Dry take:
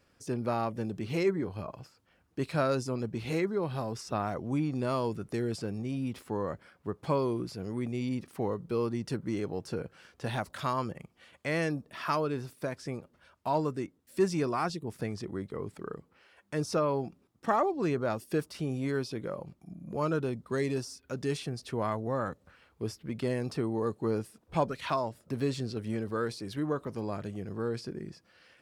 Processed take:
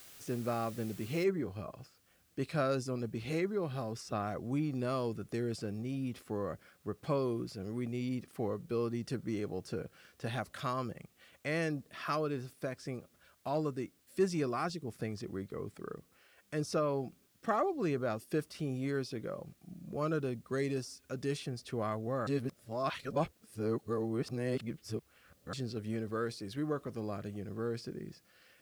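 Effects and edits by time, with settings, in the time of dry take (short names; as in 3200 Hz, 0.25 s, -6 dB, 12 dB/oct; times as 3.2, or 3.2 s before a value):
1.24 noise floor step -51 dB -69 dB
22.27–25.53 reverse
whole clip: notch 920 Hz, Q 5.5; gain -3.5 dB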